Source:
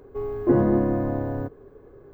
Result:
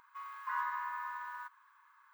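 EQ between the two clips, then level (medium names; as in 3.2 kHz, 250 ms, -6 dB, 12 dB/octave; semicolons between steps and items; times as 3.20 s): brick-wall FIR high-pass 880 Hz; +2.0 dB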